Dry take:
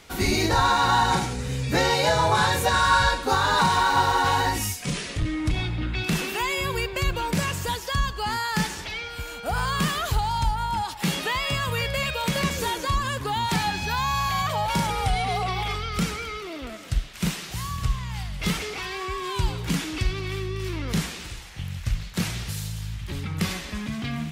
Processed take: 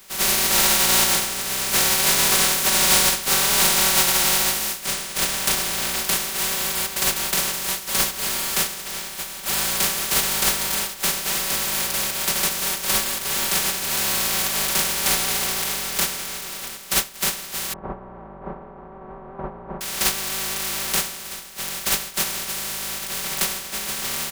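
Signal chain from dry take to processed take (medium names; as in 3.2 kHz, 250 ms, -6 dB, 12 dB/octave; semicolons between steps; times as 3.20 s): spectral contrast reduction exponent 0.1; 17.73–19.81 s: low-pass 1 kHz 24 dB/octave; comb 5.2 ms, depth 100%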